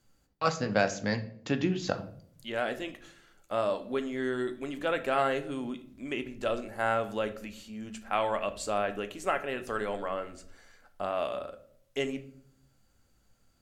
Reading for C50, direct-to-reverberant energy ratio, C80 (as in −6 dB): 15.0 dB, 8.5 dB, 18.0 dB